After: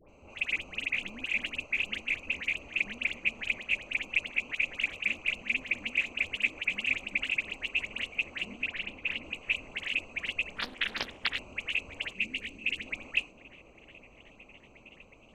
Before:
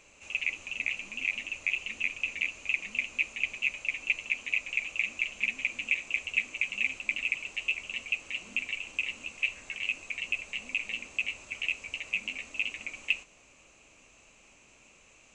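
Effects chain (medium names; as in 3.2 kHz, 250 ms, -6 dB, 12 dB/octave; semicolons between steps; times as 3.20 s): local Wiener filter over 25 samples; 12.10–12.84 s: high-order bell 930 Hz -11 dB; in parallel at -3 dB: compressor with a negative ratio -40 dBFS; 8.55–9.15 s: on the sum: distance through air 110 m; phase dispersion highs, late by 88 ms, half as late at 1.4 kHz; on a send: repeats whose band climbs or falls 366 ms, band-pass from 230 Hz, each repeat 0.7 oct, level -8 dB; 10.56–11.39 s: on the sum: loudspeaker Doppler distortion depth 0.79 ms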